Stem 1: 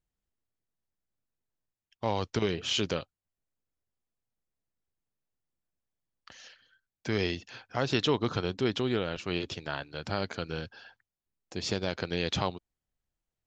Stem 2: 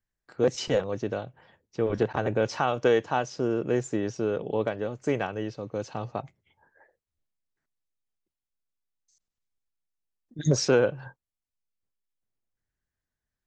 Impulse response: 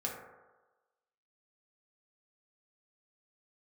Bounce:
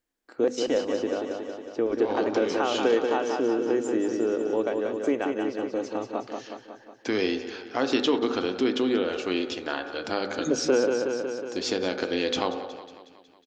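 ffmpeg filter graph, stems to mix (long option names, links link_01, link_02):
-filter_complex "[0:a]volume=1.5dB,asplit=3[link_01][link_02][link_03];[link_02]volume=-5dB[link_04];[link_03]volume=-14dB[link_05];[1:a]volume=0.5dB,asplit=4[link_06][link_07][link_08][link_09];[link_07]volume=-23.5dB[link_10];[link_08]volume=-5.5dB[link_11];[link_09]apad=whole_len=593592[link_12];[link_01][link_12]sidechaincompress=threshold=-31dB:ratio=8:attack=16:release=756[link_13];[2:a]atrim=start_sample=2205[link_14];[link_04][link_10]amix=inputs=2:normalize=0[link_15];[link_15][link_14]afir=irnorm=-1:irlink=0[link_16];[link_05][link_11]amix=inputs=2:normalize=0,aecho=0:1:183|366|549|732|915|1098|1281|1464|1647|1830:1|0.6|0.36|0.216|0.13|0.0778|0.0467|0.028|0.0168|0.0101[link_17];[link_13][link_06][link_16][link_17]amix=inputs=4:normalize=0,lowshelf=frequency=200:width_type=q:width=3:gain=-10,bandreject=frequency=50:width_type=h:width=6,bandreject=frequency=100:width_type=h:width=6,bandreject=frequency=150:width_type=h:width=6,bandreject=frequency=200:width_type=h:width=6,bandreject=frequency=250:width_type=h:width=6,acompressor=threshold=-26dB:ratio=1.5"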